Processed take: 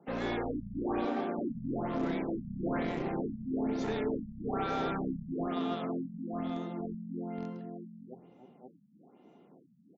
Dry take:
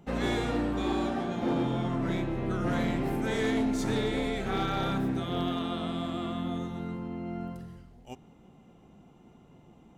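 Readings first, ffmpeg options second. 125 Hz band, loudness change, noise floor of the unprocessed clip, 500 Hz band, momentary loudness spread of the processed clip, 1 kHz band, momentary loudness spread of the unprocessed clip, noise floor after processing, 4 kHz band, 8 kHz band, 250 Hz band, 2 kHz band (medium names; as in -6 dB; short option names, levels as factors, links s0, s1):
-8.0 dB, -4.5 dB, -57 dBFS, -3.0 dB, 8 LU, -3.0 dB, 10 LU, -62 dBFS, -10.5 dB, under -15 dB, -4.0 dB, -6.5 dB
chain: -filter_complex "[0:a]asplit=2[s0][s1];[s1]highpass=f=720:p=1,volume=3.98,asoftclip=type=tanh:threshold=0.075[s2];[s0][s2]amix=inputs=2:normalize=0,lowpass=f=1300:p=1,volume=0.501,acrossover=split=150|730|1800[s3][s4][s5][s6];[s3]acrusher=bits=4:dc=4:mix=0:aa=0.000001[s7];[s4]aecho=1:1:111|304|311|531:0.141|0.299|0.335|0.631[s8];[s5]aeval=exprs='0.0398*(cos(1*acos(clip(val(0)/0.0398,-1,1)))-cos(1*PI/2))+0.00398*(cos(7*acos(clip(val(0)/0.0398,-1,1)))-cos(7*PI/2))':c=same[s9];[s7][s8][s9][s6]amix=inputs=4:normalize=0,afftfilt=real='re*lt(b*sr/1024,220*pow(7700/220,0.5+0.5*sin(2*PI*1.1*pts/sr)))':imag='im*lt(b*sr/1024,220*pow(7700/220,0.5+0.5*sin(2*PI*1.1*pts/sr)))':win_size=1024:overlap=0.75,volume=0.75"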